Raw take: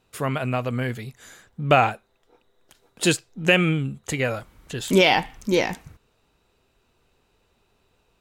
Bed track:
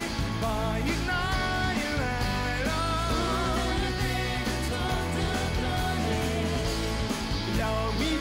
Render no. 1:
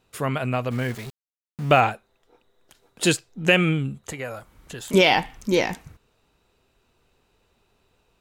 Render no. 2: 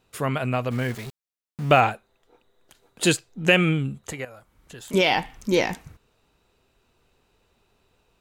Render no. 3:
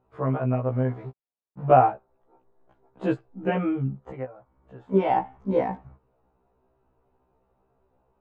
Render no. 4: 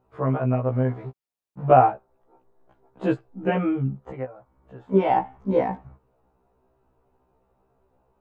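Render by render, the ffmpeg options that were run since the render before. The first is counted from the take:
-filter_complex "[0:a]asettb=1/sr,asplit=3[a][b][c];[a]atrim=end=0.714[d];[b]atrim=start=0.71:end=1.81,asetpts=PTS-STARTPTS,afade=t=in:d=0.004:c=qsin,afade=t=out:st=1.096:d=0.004:c=qsin,aeval=exprs='val(0)*gte(abs(val(0)),0.0168)':c=same[e];[c]atrim=start=1.806[f];[d][e]acrossfade=d=0.004:c1=hsin:c2=qsin[g];[g][f]acrossfade=d=0.004:c1=qsin:c2=hsin,asettb=1/sr,asplit=3[h][i][j];[h]atrim=end=4.024[k];[i]atrim=start=4.02:end=4.94,asetpts=PTS-STARTPTS,afade=t=in:d=0.004:c=qsin,afade=t=out:st=0.916:d=0.004:c=qsin,acrossover=split=590|1600|6300[l][m][n][o];[l]acompressor=threshold=-39dB:ratio=3[p];[m]acompressor=threshold=-34dB:ratio=3[q];[n]acompressor=threshold=-46dB:ratio=3[r];[o]acompressor=threshold=-39dB:ratio=3[s];[p][q][r][s]amix=inputs=4:normalize=0[t];[j]atrim=start=4.936[u];[k][t]acrossfade=d=0.004:c1=hsin:c2=qsin[v];[v][u]acrossfade=d=0.004:c1=qsin:c2=hsin"
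-filter_complex "[0:a]asettb=1/sr,asplit=3[a][b][c];[a]atrim=end=1.904[d];[b]atrim=start=1.9:end=3.39,asetpts=PTS-STARTPTS,afade=t=in:d=0.004:c=qsin,afade=t=out:st=1.486:d=0.004:c=qsin,bandreject=f=5.4k:w=16[e];[c]atrim=start=3.386[f];[d][e]acrossfade=d=0.004:c1=hsin:c2=qsin[g];[g][f]acrossfade=d=0.004:c1=qsin:c2=hsin,asplit=2[h][i];[h]atrim=end=4.25,asetpts=PTS-STARTPTS,afade=t=out:st=4.246:d=0.004:c=hsin:silence=0.251189[j];[i]atrim=start=4.25,asetpts=PTS-STARTPTS,afade=t=in:d=1.36:silence=0.251189[k];[j][k]concat=n=2:v=0:a=1"
-af "lowpass=f=890:t=q:w=1.5,afftfilt=real='re*1.73*eq(mod(b,3),0)':imag='im*1.73*eq(mod(b,3),0)':win_size=2048:overlap=0.75"
-af "volume=2dB,alimiter=limit=-3dB:level=0:latency=1"

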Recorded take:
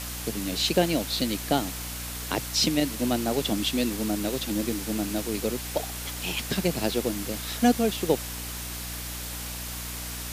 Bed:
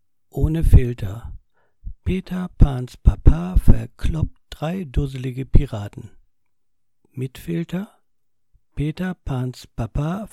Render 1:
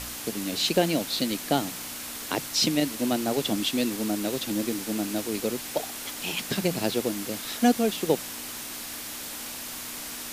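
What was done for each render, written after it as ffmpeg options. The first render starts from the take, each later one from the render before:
-af "bandreject=f=60:t=h:w=4,bandreject=f=120:t=h:w=4,bandreject=f=180:t=h:w=4"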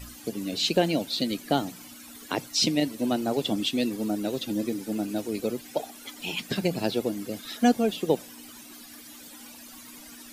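-af "afftdn=nr=15:nf=-37"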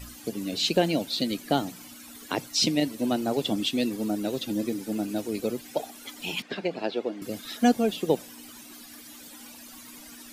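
-filter_complex "[0:a]asettb=1/sr,asplit=3[a][b][c];[a]atrim=end=6.424[d];[b]atrim=start=6.42:end=7.22,asetpts=PTS-STARTPTS,afade=t=in:d=0.004:c=qsin,afade=t=out:st=0.796:d=0.004:c=qsin,highpass=330,lowpass=3.1k[e];[c]atrim=start=7.216[f];[d][e]acrossfade=d=0.004:c1=hsin:c2=qsin[g];[g][f]acrossfade=d=0.004:c1=qsin:c2=hsin"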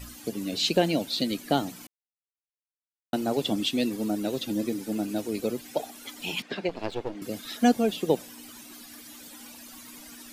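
-filter_complex "[0:a]asettb=1/sr,asplit=3[a][b][c];[a]atrim=end=6.694[d];[b]atrim=start=6.69:end=7.15,asetpts=PTS-STARTPTS,afade=t=in:d=0.004:c=qsin,afade=t=out:st=0.456:d=0.004:c=qsin,aeval=exprs='if(lt(val(0),0),0.251*val(0),val(0))':c=same[e];[c]atrim=start=7.146[f];[d][e]acrossfade=d=0.004:c1=hsin:c2=qsin[g];[g][f]acrossfade=d=0.004:c1=qsin:c2=hsin,asplit=3[h][i][j];[h]atrim=end=1.87,asetpts=PTS-STARTPTS,afade=t=out:st=1.866:d=0.004:c=hsin[k];[i]atrim=start=1.87:end=3.13,asetpts=PTS-STARTPTS,volume=0[l];[j]atrim=start=3.13,asetpts=PTS-STARTPTS,afade=t=in:d=0.004:c=hsin[m];[k][l][m]concat=n=3:v=0:a=1"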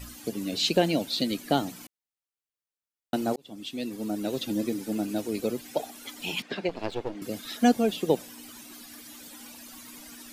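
-filter_complex "[0:a]asplit=2[a][b];[a]atrim=end=3.36,asetpts=PTS-STARTPTS,afade=t=out:st=3.356:d=0.004:c=hsin[c];[b]atrim=start=3.36,asetpts=PTS-STARTPTS,afade=t=in:d=1.03[d];[c][d]concat=n=2:v=0:a=1"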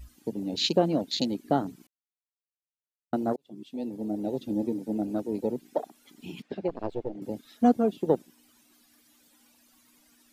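-af "afwtdn=0.0282"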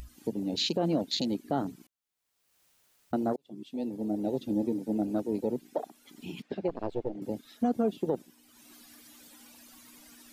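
-af "alimiter=limit=-19dB:level=0:latency=1:release=46,acompressor=mode=upward:threshold=-44dB:ratio=2.5"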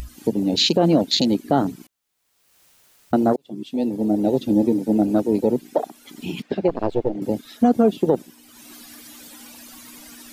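-af "volume=11.5dB"

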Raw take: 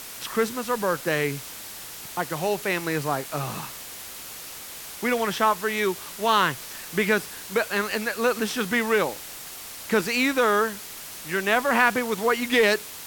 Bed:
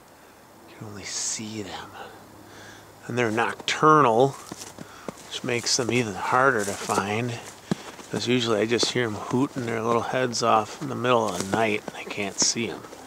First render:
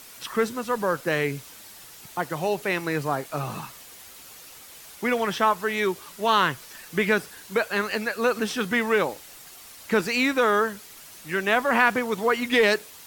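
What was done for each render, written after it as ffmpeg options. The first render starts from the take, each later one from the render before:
-af "afftdn=nr=8:nf=-39"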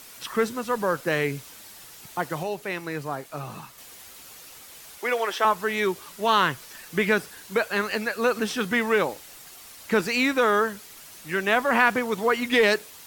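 -filter_complex "[0:a]asettb=1/sr,asplit=3[a][b][c];[a]atrim=end=4.984[d];[b]atrim=start=4.98:end=5.45,asetpts=PTS-STARTPTS,afade=t=in:d=0.004:c=qsin,afade=t=out:st=0.466:d=0.004:c=qsin,highpass=f=350:w=0.5412,highpass=f=350:w=1.3066[e];[c]atrim=start=5.446[f];[d][e]acrossfade=d=0.004:c1=hsin:c2=qsin[g];[g][f]acrossfade=d=0.004:c1=qsin:c2=hsin,asplit=3[h][i][j];[h]atrim=end=2.432[k];[i]atrim=start=2.428:end=3.782,asetpts=PTS-STARTPTS,volume=-5dB[l];[j]atrim=start=3.778[m];[k][l]acrossfade=d=0.004:c1=hsin:c2=hsin[n];[n][m]acrossfade=d=0.004:c1=hsin:c2=hsin"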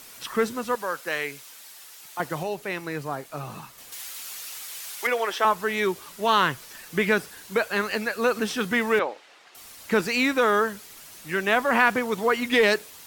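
-filter_complex "[0:a]asettb=1/sr,asplit=3[a][b][c];[a]atrim=end=0.754[d];[b]atrim=start=0.75:end=2.2,asetpts=PTS-STARTPTS,afade=t=in:d=0.004:c=qsin,afade=t=out:st=1.446:d=0.004:c=qsin,highpass=f=1k:p=1[e];[c]atrim=start=2.196[f];[d][e]acrossfade=d=0.004:c1=hsin:c2=qsin[g];[g][f]acrossfade=d=0.004:c1=qsin:c2=hsin,asettb=1/sr,asplit=3[h][i][j];[h]atrim=end=3.924[k];[i]atrim=start=3.92:end=5.07,asetpts=PTS-STARTPTS,afade=t=in:d=0.004:c=qsin,afade=t=out:st=1.146:d=0.004:c=qsin,tiltshelf=f=710:g=-8.5[l];[j]atrim=start=5.066[m];[k][l]acrossfade=d=0.004:c1=hsin:c2=qsin[n];[n][m]acrossfade=d=0.004:c1=qsin:c2=hsin,asettb=1/sr,asplit=3[o][p][q];[o]atrim=end=8.994[r];[p]atrim=start=8.99:end=9.55,asetpts=PTS-STARTPTS,afade=t=in:d=0.004:c=qsin,afade=t=out:st=0.556:d=0.004:c=qsin,highpass=410,lowpass=3.2k[s];[q]atrim=start=9.546[t];[r][s]acrossfade=d=0.004:c1=hsin:c2=qsin[u];[u][t]acrossfade=d=0.004:c1=qsin:c2=hsin"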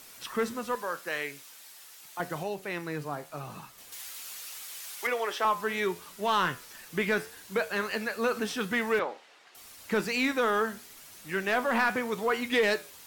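-af "flanger=delay=9.8:depth=4.1:regen=79:speed=0.8:shape=triangular,asoftclip=type=tanh:threshold=-15.5dB"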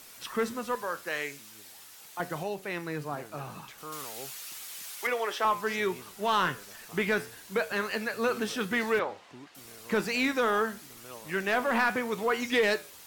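-filter_complex "[1:a]volume=-26dB[a];[0:a][a]amix=inputs=2:normalize=0"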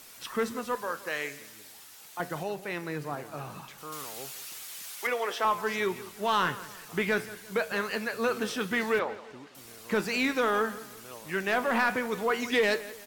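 -filter_complex "[0:a]asplit=2[a][b];[b]adelay=171,lowpass=f=4.5k:p=1,volume=-16.5dB,asplit=2[c][d];[d]adelay=171,lowpass=f=4.5k:p=1,volume=0.4,asplit=2[e][f];[f]adelay=171,lowpass=f=4.5k:p=1,volume=0.4[g];[a][c][e][g]amix=inputs=4:normalize=0"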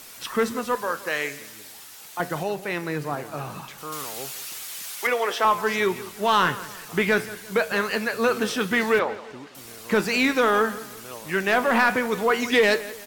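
-af "volume=6.5dB"

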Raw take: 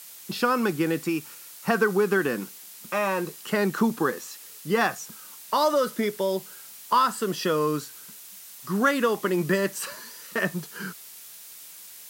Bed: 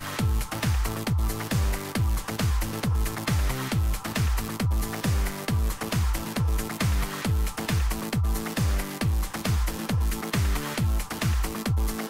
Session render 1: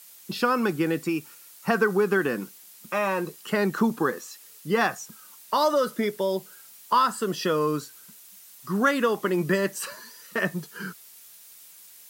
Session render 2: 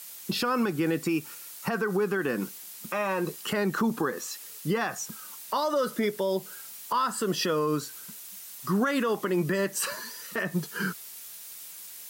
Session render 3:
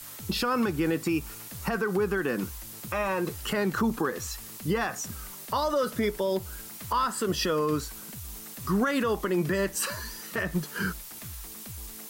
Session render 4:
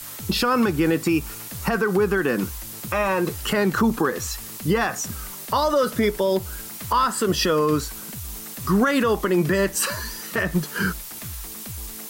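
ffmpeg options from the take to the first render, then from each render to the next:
-af "afftdn=nr=6:nf=-45"
-filter_complex "[0:a]asplit=2[a][b];[b]acompressor=threshold=-30dB:ratio=6,volume=-1dB[c];[a][c]amix=inputs=2:normalize=0,alimiter=limit=-18dB:level=0:latency=1:release=124"
-filter_complex "[1:a]volume=-18.5dB[a];[0:a][a]amix=inputs=2:normalize=0"
-af "volume=6.5dB"

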